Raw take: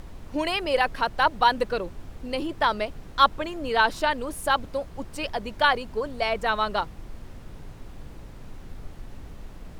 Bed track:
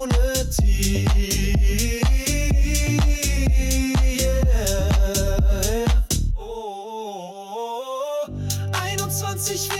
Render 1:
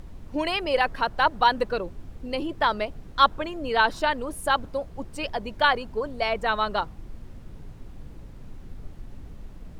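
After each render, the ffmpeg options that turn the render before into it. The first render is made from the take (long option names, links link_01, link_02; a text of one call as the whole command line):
ffmpeg -i in.wav -af "afftdn=noise_reduction=6:noise_floor=-43" out.wav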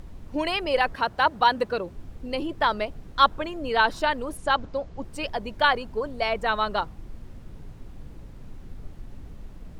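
ffmpeg -i in.wav -filter_complex "[0:a]asettb=1/sr,asplit=3[link_01][link_02][link_03];[link_01]atrim=end=0.944[link_04];[link_02]atrim=start=0.94:end=1.94,asetpts=PTS-STARTPTS,afade=type=in:duration=0.004:curve=qsin,afade=type=out:start_time=0.996:duration=0.004:curve=qsin,highpass=64[link_05];[link_03]atrim=start=1.936[link_06];[link_04][link_05]acrossfade=duration=0.004:curve1=hsin:curve2=qsin[link_07];[link_07][link_06]acrossfade=duration=0.004:curve1=qsin:curve2=hsin,asettb=1/sr,asplit=3[link_08][link_09][link_10];[link_08]atrim=end=4.374[link_11];[link_09]atrim=start=4.37:end=5.03,asetpts=PTS-STARTPTS,afade=type=in:duration=0.004:curve=qsin,afade=type=out:start_time=0.656:duration=0.004:curve=qsin,lowpass=frequency=7000:width=0.5412,lowpass=frequency=7000:width=1.3066[link_12];[link_10]atrim=start=5.026[link_13];[link_11][link_12]acrossfade=duration=0.004:curve1=hsin:curve2=qsin[link_14];[link_14][link_13]acrossfade=duration=0.004:curve1=qsin:curve2=hsin" out.wav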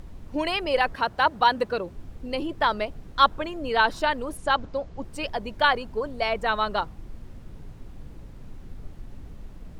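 ffmpeg -i in.wav -af anull out.wav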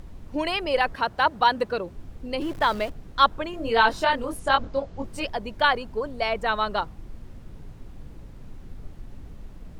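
ffmpeg -i in.wav -filter_complex "[0:a]asettb=1/sr,asplit=3[link_01][link_02][link_03];[link_01]atrim=end=2.414[link_04];[link_02]atrim=start=2.41:end=2.92,asetpts=PTS-STARTPTS,afade=type=in:duration=0.004:curve=qsin,afade=type=out:start_time=0.506:duration=0.004:curve=qsin,aeval=exprs='val(0)+0.5*0.015*sgn(val(0))':channel_layout=same[link_05];[link_03]atrim=start=2.916[link_06];[link_04][link_05]acrossfade=duration=0.004:curve1=hsin:curve2=qsin[link_07];[link_07][link_06]acrossfade=duration=0.004:curve1=qsin:curve2=hsin,asettb=1/sr,asplit=3[link_08][link_09][link_10];[link_08]atrim=end=3.514[link_11];[link_09]atrim=start=3.51:end=5.25,asetpts=PTS-STARTPTS,afade=type=in:duration=0.004:curve=qsin,afade=type=out:start_time=1.736:duration=0.004:curve=qsin,asplit=2[link_12][link_13];[link_13]adelay=22,volume=-2.5dB[link_14];[link_12][link_14]amix=inputs=2:normalize=0,atrim=end_sample=76734[link_15];[link_10]atrim=start=5.246[link_16];[link_11][link_15]acrossfade=duration=0.004:curve1=hsin:curve2=qsin[link_17];[link_17][link_16]acrossfade=duration=0.004:curve1=qsin:curve2=hsin" out.wav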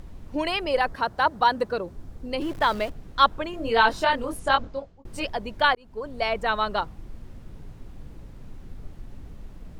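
ffmpeg -i in.wav -filter_complex "[0:a]asettb=1/sr,asplit=3[link_01][link_02][link_03];[link_01]atrim=end=0.714[link_04];[link_02]atrim=start=0.71:end=2.32,asetpts=PTS-STARTPTS,afade=type=in:duration=0.004:curve=qsin,afade=type=out:start_time=1.606:duration=0.004:curve=qsin,equalizer=frequency=2700:width=1.5:gain=-5[link_05];[link_03]atrim=start=2.316[link_06];[link_04][link_05]acrossfade=duration=0.004:curve1=hsin:curve2=qsin[link_07];[link_07][link_06]acrossfade=duration=0.004:curve1=qsin:curve2=hsin,asplit=3[link_08][link_09][link_10];[link_08]atrim=end=5.05,asetpts=PTS-STARTPTS,afade=type=out:start_time=4.52:duration=0.53[link_11];[link_09]atrim=start=5.05:end=5.75,asetpts=PTS-STARTPTS,afade=type=in:duration=0.004:curve=hsin,afade=type=out:start_time=0.696:duration=0.004:curve=hsin[link_12];[link_10]atrim=start=5.75,asetpts=PTS-STARTPTS,afade=type=in:duration=0.45[link_13];[link_11][link_12][link_13]concat=n=3:v=0:a=1" out.wav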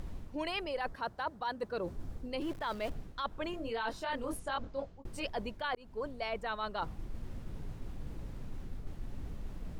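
ffmpeg -i in.wav -af "alimiter=limit=-15.5dB:level=0:latency=1:release=272,areverse,acompressor=threshold=-34dB:ratio=6,areverse" out.wav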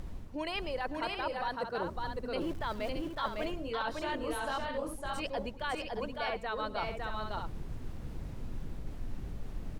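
ffmpeg -i in.wav -af "aecho=1:1:107|556|621:0.106|0.708|0.422" out.wav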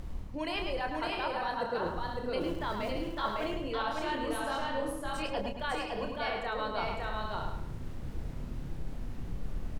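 ffmpeg -i in.wav -filter_complex "[0:a]asplit=2[link_01][link_02];[link_02]adelay=29,volume=-6.5dB[link_03];[link_01][link_03]amix=inputs=2:normalize=0,asplit=2[link_04][link_05];[link_05]adelay=106,lowpass=frequency=4700:poles=1,volume=-5.5dB,asplit=2[link_06][link_07];[link_07]adelay=106,lowpass=frequency=4700:poles=1,volume=0.36,asplit=2[link_08][link_09];[link_09]adelay=106,lowpass=frequency=4700:poles=1,volume=0.36,asplit=2[link_10][link_11];[link_11]adelay=106,lowpass=frequency=4700:poles=1,volume=0.36[link_12];[link_04][link_06][link_08][link_10][link_12]amix=inputs=5:normalize=0" out.wav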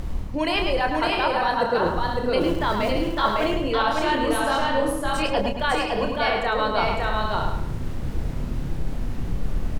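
ffmpeg -i in.wav -af "volume=11.5dB" out.wav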